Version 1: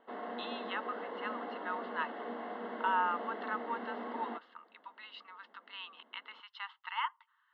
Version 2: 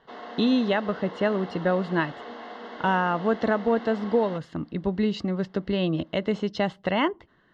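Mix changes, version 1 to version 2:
speech: remove rippled Chebyshev high-pass 880 Hz, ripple 6 dB; master: remove air absorption 480 m

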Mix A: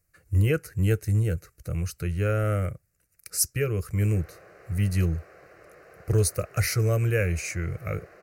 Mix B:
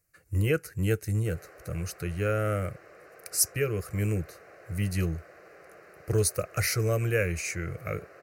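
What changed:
background: entry -2.75 s; master: add low shelf 120 Hz -9 dB

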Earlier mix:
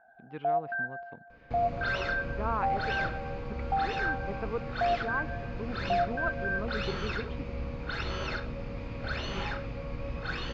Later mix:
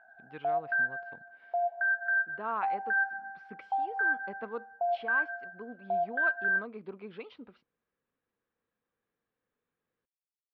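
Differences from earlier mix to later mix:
first sound: remove LPF 1200 Hz; second sound: muted; master: add low shelf 460 Hz -8 dB

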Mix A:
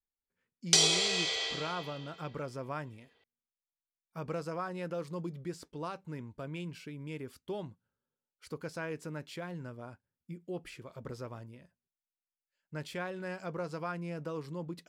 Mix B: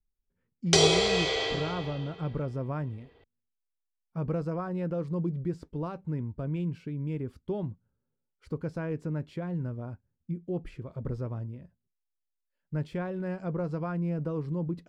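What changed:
background +8.5 dB; master: add tilt -4 dB/oct

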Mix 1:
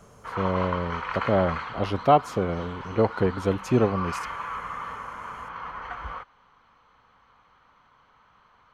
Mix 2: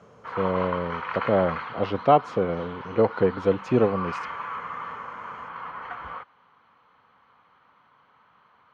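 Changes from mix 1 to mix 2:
speech: add bell 490 Hz +6 dB 0.21 oct; master: add BPF 120–3700 Hz

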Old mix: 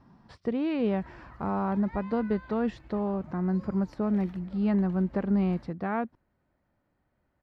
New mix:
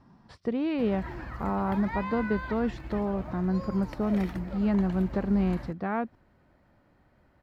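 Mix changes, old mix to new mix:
background +11.5 dB; master: add high shelf 9800 Hz +8.5 dB

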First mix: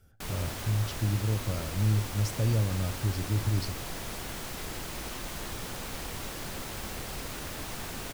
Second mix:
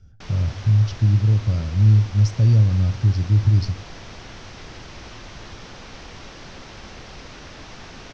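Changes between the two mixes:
speech: add tone controls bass +14 dB, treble +7 dB; master: add elliptic low-pass 5900 Hz, stop band 80 dB

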